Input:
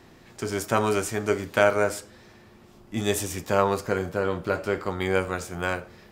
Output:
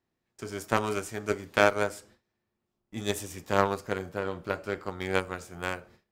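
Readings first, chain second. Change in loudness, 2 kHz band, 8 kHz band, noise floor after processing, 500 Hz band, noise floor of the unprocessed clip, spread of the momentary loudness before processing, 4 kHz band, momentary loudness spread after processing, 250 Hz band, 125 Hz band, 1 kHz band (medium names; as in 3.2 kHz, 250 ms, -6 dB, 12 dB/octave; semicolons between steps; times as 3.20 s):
-4.0 dB, -2.5 dB, -7.0 dB, -83 dBFS, -5.0 dB, -52 dBFS, 10 LU, -2.5 dB, 15 LU, -5.0 dB, -5.5 dB, -3.0 dB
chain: Chebyshev shaper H 3 -29 dB, 7 -22 dB, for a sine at -3 dBFS; gate with hold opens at -45 dBFS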